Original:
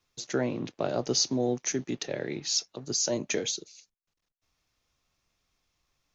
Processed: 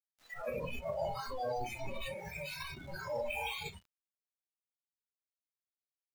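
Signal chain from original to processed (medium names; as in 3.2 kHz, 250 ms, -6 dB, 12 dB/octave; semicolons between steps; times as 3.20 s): comb filter that takes the minimum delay 1.6 ms; compression 12:1, threshold -37 dBFS, peak gain reduction 14.5 dB; four-pole ladder low-pass 2.9 kHz, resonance 30%; resonant low shelf 500 Hz -10.5 dB, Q 1.5; simulated room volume 560 m³, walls mixed, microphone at 2 m; transient shaper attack -4 dB, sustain +12 dB; bit crusher 8-bit; peak limiter -38 dBFS, peak gain reduction 7 dB; spectral noise reduction 26 dB; trim +12.5 dB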